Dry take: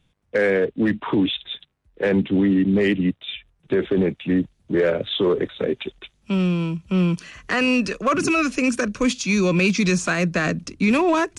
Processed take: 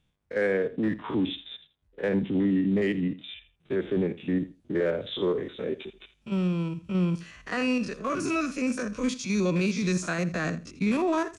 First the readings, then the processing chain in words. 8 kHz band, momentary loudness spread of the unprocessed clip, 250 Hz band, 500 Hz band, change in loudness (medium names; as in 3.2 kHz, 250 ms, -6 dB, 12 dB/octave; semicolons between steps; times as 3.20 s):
-8.5 dB, 8 LU, -6.5 dB, -7.0 dB, -7.0 dB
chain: spectrogram pixelated in time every 50 ms; feedback delay 82 ms, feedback 15%, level -17 dB; dynamic bell 2.7 kHz, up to -4 dB, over -41 dBFS, Q 2.4; trim -6 dB